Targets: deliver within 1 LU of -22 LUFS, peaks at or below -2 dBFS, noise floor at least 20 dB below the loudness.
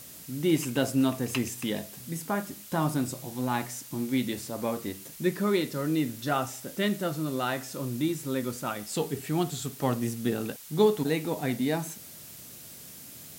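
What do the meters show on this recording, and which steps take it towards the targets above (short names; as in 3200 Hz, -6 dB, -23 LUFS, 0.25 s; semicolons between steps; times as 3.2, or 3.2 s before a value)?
noise floor -46 dBFS; noise floor target -50 dBFS; loudness -30.0 LUFS; peak -11.0 dBFS; loudness target -22.0 LUFS
-> denoiser 6 dB, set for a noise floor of -46 dBFS; gain +8 dB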